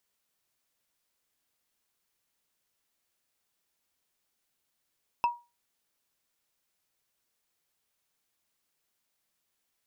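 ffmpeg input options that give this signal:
ffmpeg -f lavfi -i "aevalsrc='0.112*pow(10,-3*t/0.27)*sin(2*PI*955*t)+0.0355*pow(10,-3*t/0.08)*sin(2*PI*2632.9*t)+0.0112*pow(10,-3*t/0.036)*sin(2*PI*5160.8*t)+0.00355*pow(10,-3*t/0.02)*sin(2*PI*8531*t)+0.00112*pow(10,-3*t/0.012)*sin(2*PI*12739.7*t)':duration=0.45:sample_rate=44100" out.wav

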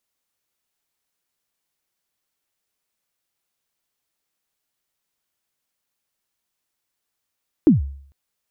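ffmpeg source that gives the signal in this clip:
ffmpeg -f lavfi -i "aevalsrc='0.501*pow(10,-3*t/0.58)*sin(2*PI*(350*0.141/log(69/350)*(exp(log(69/350)*min(t,0.141)/0.141)-1)+69*max(t-0.141,0)))':duration=0.45:sample_rate=44100" out.wav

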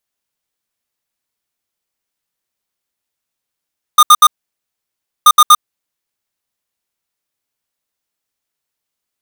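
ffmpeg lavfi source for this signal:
ffmpeg -f lavfi -i "aevalsrc='0.631*(2*lt(mod(1220*t,1),0.5)-1)*clip(min(mod(mod(t,1.28),0.12),0.05-mod(mod(t,1.28),0.12))/0.005,0,1)*lt(mod(t,1.28),0.36)':duration=2.56:sample_rate=44100" out.wav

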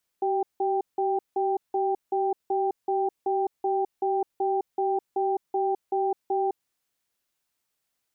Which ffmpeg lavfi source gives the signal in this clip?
ffmpeg -f lavfi -i "aevalsrc='0.0562*(sin(2*PI*383*t)+sin(2*PI*787*t))*clip(min(mod(t,0.38),0.21-mod(t,0.38))/0.005,0,1)':duration=6.38:sample_rate=44100" out.wav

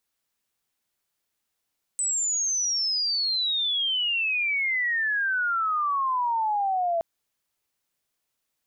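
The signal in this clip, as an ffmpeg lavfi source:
ffmpeg -f lavfi -i "aevalsrc='pow(10,(-23+1*t/5.02)/20)*sin(2*PI*8100*5.02/log(660/8100)*(exp(log(660/8100)*t/5.02)-1))':duration=5.02:sample_rate=44100" out.wav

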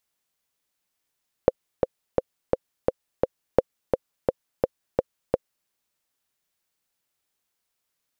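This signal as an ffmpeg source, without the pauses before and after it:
ffmpeg -f lavfi -i "aevalsrc='pow(10,(-1.5-4.5*gte(mod(t,6*60/171),60/171))/20)*sin(2*PI*518*mod(t,60/171))*exp(-6.91*mod(t,60/171)/0.03)':duration=4.21:sample_rate=44100" out.wav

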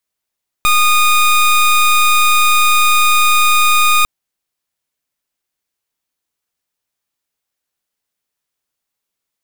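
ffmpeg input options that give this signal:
ffmpeg -f lavfi -i "aevalsrc='0.299*(2*lt(mod(1230*t,1),0.22)-1)':duration=3.4:sample_rate=44100" out.wav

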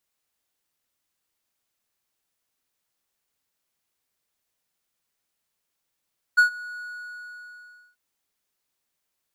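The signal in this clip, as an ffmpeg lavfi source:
ffmpeg -f lavfi -i "aevalsrc='0.355*(1-4*abs(mod(1460*t+0.25,1)-0.5))':duration=1.59:sample_rate=44100,afade=type=in:duration=0.017,afade=type=out:start_time=0.017:duration=0.109:silence=0.075,afade=type=out:start_time=0.43:duration=1.16" out.wav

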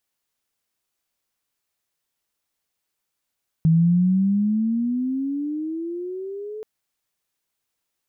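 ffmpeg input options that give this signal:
ffmpeg -f lavfi -i "aevalsrc='pow(10,(-12.5-18*t/2.98)/20)*sin(2*PI*159*2.98/(17.5*log(2)/12)*(exp(17.5*log(2)/12*t/2.98)-1))':duration=2.98:sample_rate=44100" out.wav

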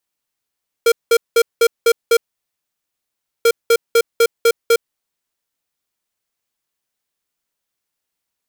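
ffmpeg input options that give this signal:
ffmpeg -f lavfi -i "aevalsrc='0.282*(2*lt(mod(464*t,1),0.5)-1)*clip(min(mod(mod(t,2.59),0.25),0.06-mod(mod(t,2.59),0.25))/0.005,0,1)*lt(mod(t,2.59),1.5)':duration=5.18:sample_rate=44100" out.wav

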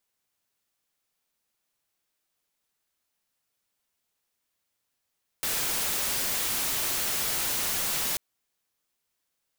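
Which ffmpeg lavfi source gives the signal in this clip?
ffmpeg -f lavfi -i "anoisesrc=color=white:amplitude=0.0651:duration=2.74:sample_rate=44100:seed=1" out.wav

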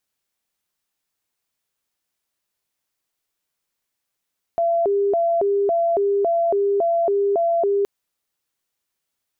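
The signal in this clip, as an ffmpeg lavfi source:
ffmpeg -f lavfi -i "aevalsrc='0.158*sin(2*PI*(539*t+138/1.8*(0.5-abs(mod(1.8*t,1)-0.5))))':duration=3.27:sample_rate=44100" out.wav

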